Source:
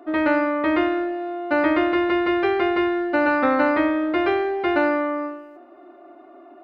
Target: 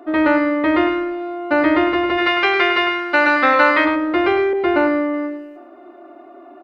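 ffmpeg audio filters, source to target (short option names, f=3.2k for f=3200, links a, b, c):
-filter_complex "[0:a]asplit=3[a][b][c];[a]afade=t=out:st=2.17:d=0.02[d];[b]tiltshelf=f=690:g=-9.5,afade=t=in:st=2.17:d=0.02,afade=t=out:st=3.84:d=0.02[e];[c]afade=t=in:st=3.84:d=0.02[f];[d][e][f]amix=inputs=3:normalize=0,asplit=2[g][h];[h]adelay=105,volume=-7dB,highshelf=f=4k:g=-2.36[i];[g][i]amix=inputs=2:normalize=0,asettb=1/sr,asplit=3[j][k][l];[j]atrim=end=4.534[m];[k]atrim=start=4.53:end=5.14,asetpts=PTS-STARTPTS,afade=t=in:d=0.004:c=qsin,afade=t=out:st=0.606:d=0.004:c=qsin,adynamicequalizer=threshold=0.0251:dfrequency=1500:dqfactor=0.7:tfrequency=1500:tqfactor=0.7:attack=5:release=100:ratio=0.375:range=2.5:mode=cutabove:tftype=highshelf[n];[l]atrim=start=5.136[o];[m][n]acrossfade=d=0.004:c1=hsin:c2=qsin[p];[p][o]acrossfade=d=0.004:c1=qsin:c2=hsin,volume=4dB"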